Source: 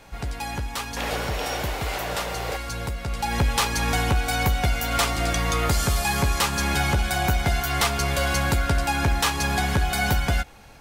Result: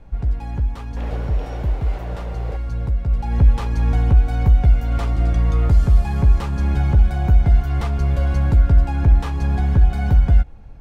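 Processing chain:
spectral tilt −4.5 dB per octave
level −7.5 dB

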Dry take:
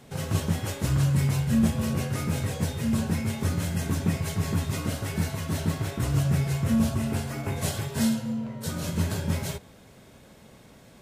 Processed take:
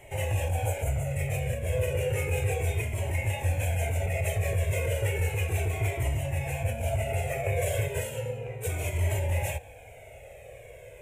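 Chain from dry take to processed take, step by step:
healed spectral selection 0:00.50–0:01.08, 1,500–6,000 Hz
brickwall limiter −22.5 dBFS, peak gain reduction 11 dB
drawn EQ curve 110 Hz 0 dB, 210 Hz −25 dB, 490 Hz +7 dB, 780 Hz +2 dB, 1,200 Hz −16 dB, 2,400 Hz +8 dB, 4,600 Hz −23 dB, 7,300 Hz −2 dB
flanger whose copies keep moving one way falling 0.33 Hz
level +8.5 dB

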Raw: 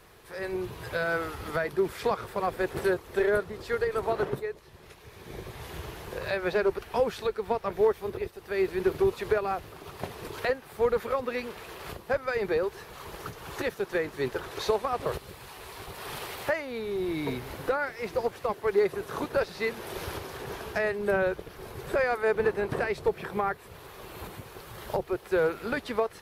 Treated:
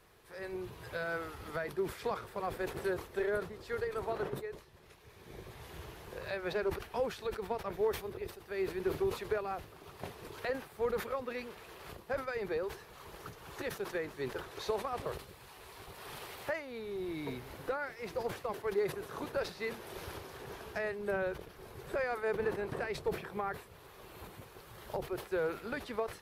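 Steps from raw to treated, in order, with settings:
level that may fall only so fast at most 140 dB per second
level −8.5 dB

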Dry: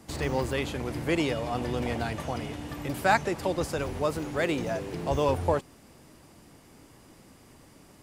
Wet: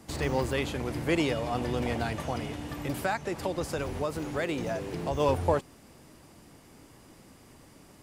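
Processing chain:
0:02.94–0:05.20: downward compressor 4 to 1, threshold −27 dBFS, peak gain reduction 9.5 dB

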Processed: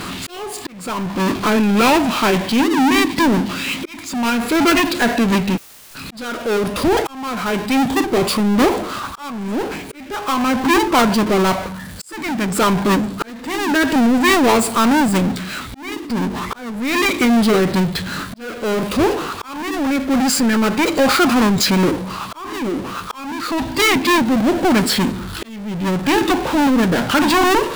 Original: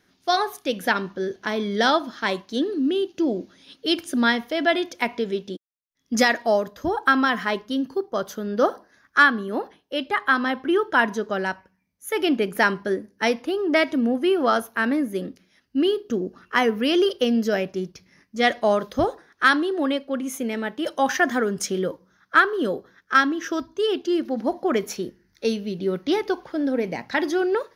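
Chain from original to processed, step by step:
power curve on the samples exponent 0.35
formants moved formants −5 semitones
volume swells 751 ms
level −1 dB

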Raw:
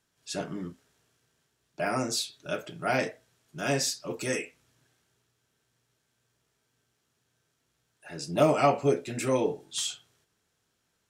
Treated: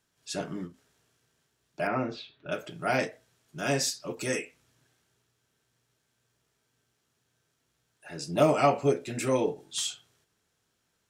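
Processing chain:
0:01.87–0:02.52: low-pass filter 3,000 Hz 24 dB per octave
every ending faded ahead of time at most 230 dB per second

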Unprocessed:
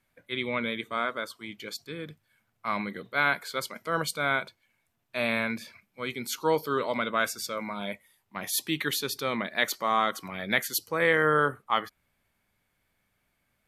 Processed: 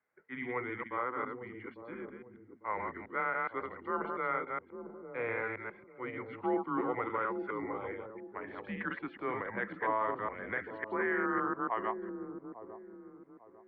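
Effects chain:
delay that plays each chunk backwards 139 ms, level −4 dB
brickwall limiter −16 dBFS, peak gain reduction 7.5 dB
single-sideband voice off tune −120 Hz 340–2,200 Hz
delay with a low-pass on its return 849 ms, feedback 33%, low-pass 460 Hz, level −5 dB
level −5.5 dB

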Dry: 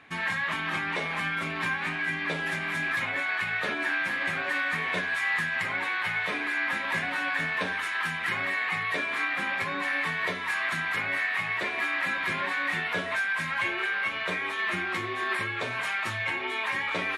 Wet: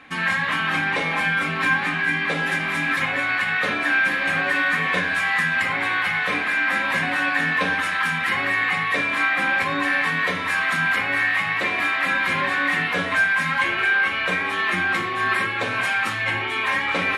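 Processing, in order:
rectangular room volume 3,400 cubic metres, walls furnished, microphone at 2.1 metres
level +5.5 dB

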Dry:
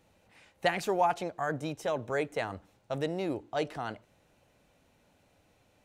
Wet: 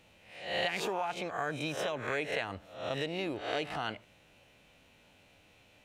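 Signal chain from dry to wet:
peak hold with a rise ahead of every peak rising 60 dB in 0.53 s
downward compressor 6 to 1, threshold −32 dBFS, peak gain reduction 12 dB
parametric band 2,800 Hz +10 dB 1.1 octaves

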